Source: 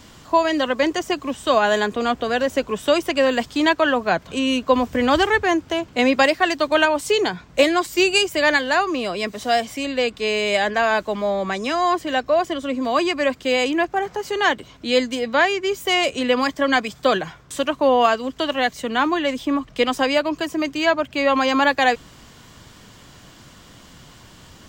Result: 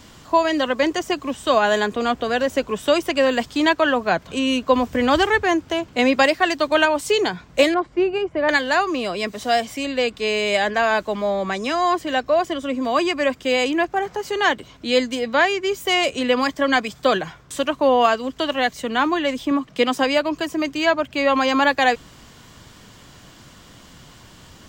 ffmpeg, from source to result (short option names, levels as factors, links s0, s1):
-filter_complex "[0:a]asettb=1/sr,asplit=3[s0][s1][s2];[s0]atrim=end=7.744[s3];[s1]atrim=start=7.74:end=8.49,asetpts=PTS-STARTPTS,afade=t=in:d=0.004:c=qsin,afade=t=out:st=0.746:d=0.004:c=qsin,lowpass=1200[s4];[s2]atrim=start=8.486[s5];[s3][s4]acrossfade=d=0.004:c1=hsin:c2=qsin[s6];[s6][s5]acrossfade=d=0.004:c1=qsin:c2=hsin,asettb=1/sr,asplit=3[s7][s8][s9];[s7]atrim=end=12.564[s10];[s8]atrim=start=12.56:end=13.5,asetpts=PTS-STARTPTS,afade=t=in:d=0.004:c=qsin,afade=t=out:st=0.936:d=0.004:c=qsin,bandreject=f=4200:w=12[s11];[s9]atrim=start=13.496[s12];[s10][s11]acrossfade=d=0.004:c1=hsin:c2=qsin[s13];[s13][s12]acrossfade=d=0.004:c1=qsin:c2=hsin,asettb=1/sr,asplit=3[s14][s15][s16];[s14]atrim=end=19.514[s17];[s15]atrim=start=19.51:end=20.04,asetpts=PTS-STARTPTS,afade=t=in:d=0.004:c=qsin,afade=t=out:st=0.526:d=0.004:c=qsin,lowshelf=f=110:t=q:w=1.5:g=-11.5[s18];[s16]atrim=start=20.036[s19];[s17][s18]acrossfade=d=0.004:c1=hsin:c2=qsin[s20];[s20][s19]acrossfade=d=0.004:c1=qsin:c2=hsin"